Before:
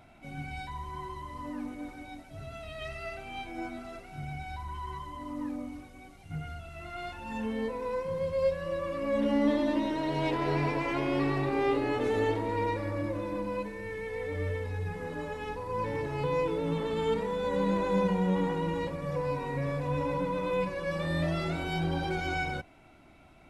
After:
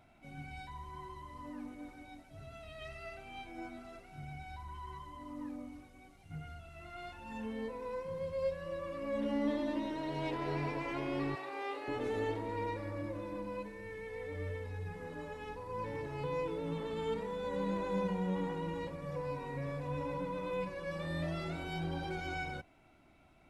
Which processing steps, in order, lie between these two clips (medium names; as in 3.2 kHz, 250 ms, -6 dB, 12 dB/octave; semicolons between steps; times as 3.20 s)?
11.35–11.88 s: high-pass 610 Hz 12 dB/octave; trim -7.5 dB